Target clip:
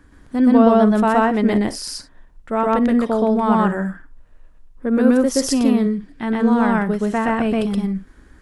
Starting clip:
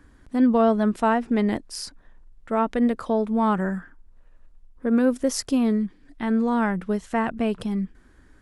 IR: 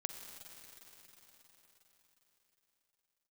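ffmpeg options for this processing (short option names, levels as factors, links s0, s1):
-filter_complex "[0:a]asplit=2[s0][s1];[1:a]atrim=start_sample=2205,atrim=end_sample=3528,adelay=123[s2];[s1][s2]afir=irnorm=-1:irlink=0,volume=1.33[s3];[s0][s3]amix=inputs=2:normalize=0,volume=1.33"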